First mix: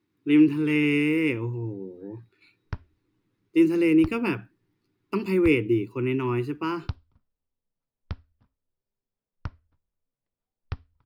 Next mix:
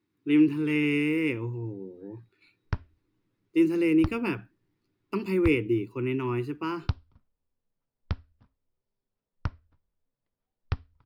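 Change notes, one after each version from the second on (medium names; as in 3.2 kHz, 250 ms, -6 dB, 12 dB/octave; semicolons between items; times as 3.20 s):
speech -3.0 dB; background +3.5 dB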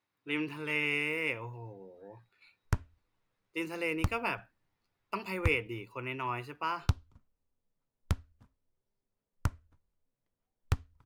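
speech: add resonant low shelf 460 Hz -10 dB, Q 3; background: remove steep low-pass 5.5 kHz 96 dB/octave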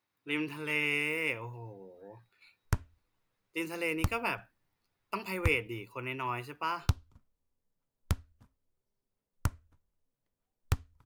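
master: add treble shelf 7.4 kHz +8.5 dB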